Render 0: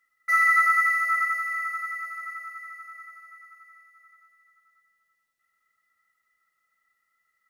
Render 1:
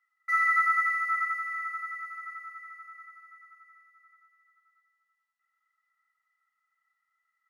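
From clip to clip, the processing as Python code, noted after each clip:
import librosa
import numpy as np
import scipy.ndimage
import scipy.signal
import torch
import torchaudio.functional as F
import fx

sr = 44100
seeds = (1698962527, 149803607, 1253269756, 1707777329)

y = scipy.signal.sosfilt(scipy.signal.butter(8, 790.0, 'highpass', fs=sr, output='sos'), x)
y = fx.tilt_eq(y, sr, slope=-3.5)
y = y * librosa.db_to_amplitude(-2.0)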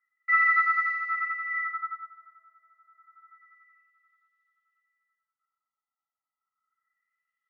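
y = fx.filter_lfo_lowpass(x, sr, shape='sine', hz=0.29, low_hz=820.0, high_hz=3600.0, q=3.1)
y = fx.upward_expand(y, sr, threshold_db=-39.0, expansion=1.5)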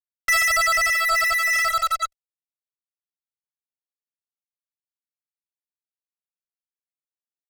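y = fx.fuzz(x, sr, gain_db=43.0, gate_db=-43.0)
y = fx.dereverb_blind(y, sr, rt60_s=0.76)
y = y * librosa.db_to_amplitude(-3.5)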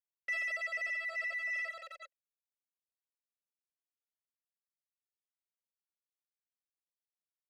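y = fx.vowel_filter(x, sr, vowel='e')
y = y * librosa.db_to_amplitude(-5.0)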